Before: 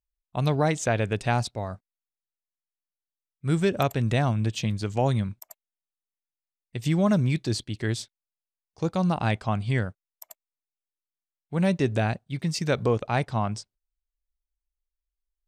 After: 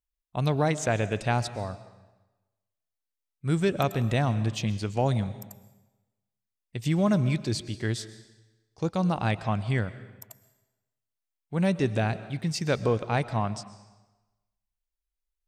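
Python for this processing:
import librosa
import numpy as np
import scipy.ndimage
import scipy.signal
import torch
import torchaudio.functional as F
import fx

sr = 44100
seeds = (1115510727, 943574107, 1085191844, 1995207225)

y = fx.rev_freeverb(x, sr, rt60_s=1.1, hf_ratio=0.95, predelay_ms=85, drr_db=14.5)
y = F.gain(torch.from_numpy(y), -1.5).numpy()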